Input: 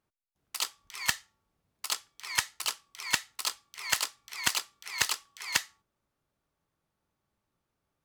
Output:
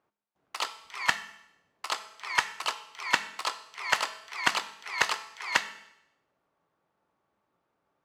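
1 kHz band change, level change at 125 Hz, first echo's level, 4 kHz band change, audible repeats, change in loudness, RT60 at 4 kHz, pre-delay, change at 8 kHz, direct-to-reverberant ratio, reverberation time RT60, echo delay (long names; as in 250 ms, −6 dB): +8.5 dB, −2.0 dB, no echo audible, −0.5 dB, no echo audible, +1.5 dB, 0.80 s, 5 ms, −6.5 dB, 11.5 dB, 0.80 s, no echo audible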